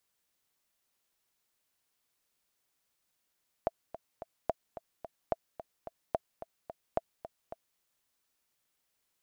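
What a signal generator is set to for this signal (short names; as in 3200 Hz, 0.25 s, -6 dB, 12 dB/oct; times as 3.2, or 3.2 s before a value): metronome 218 bpm, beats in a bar 3, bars 5, 664 Hz, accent 13.5 dB -15 dBFS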